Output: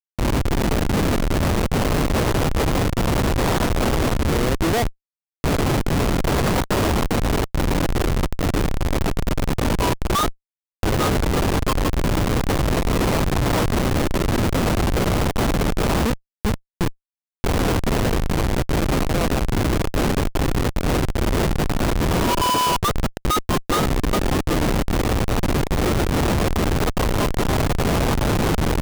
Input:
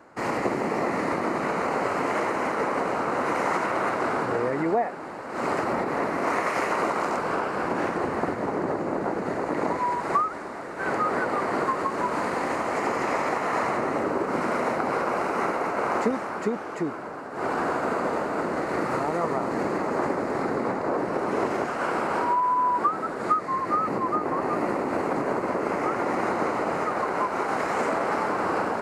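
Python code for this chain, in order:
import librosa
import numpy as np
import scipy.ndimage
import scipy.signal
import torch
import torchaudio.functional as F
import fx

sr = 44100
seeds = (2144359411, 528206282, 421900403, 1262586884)

p1 = fx.volume_shaper(x, sr, bpm=145, per_beat=1, depth_db=-15, release_ms=67.0, shape='slow start')
p2 = x + (p1 * librosa.db_to_amplitude(-0.5))
p3 = fx.schmitt(p2, sr, flips_db=-16.5)
y = p3 * librosa.db_to_amplitude(2.5)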